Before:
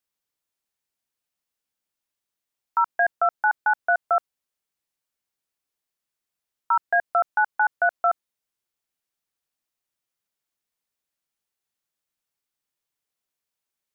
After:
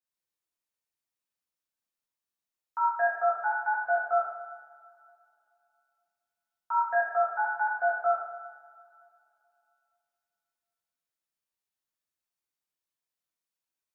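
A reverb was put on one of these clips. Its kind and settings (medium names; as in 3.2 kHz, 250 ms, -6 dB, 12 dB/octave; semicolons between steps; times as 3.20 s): two-slope reverb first 0.88 s, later 2.8 s, from -18 dB, DRR -7.5 dB; trim -14 dB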